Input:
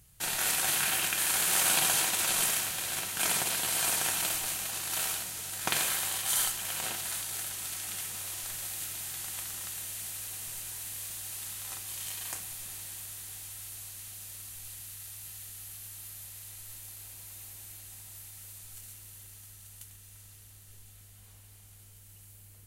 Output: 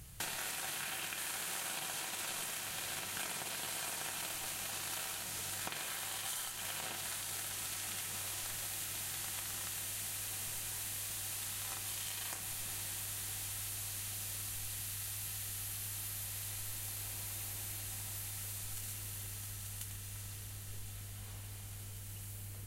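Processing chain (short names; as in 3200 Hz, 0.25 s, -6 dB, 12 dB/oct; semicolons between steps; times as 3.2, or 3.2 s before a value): high shelf 6000 Hz -5 dB; compressor 12:1, threshold -46 dBFS, peak gain reduction 21.5 dB; soft clip -34 dBFS, distortion -29 dB; gain +8.5 dB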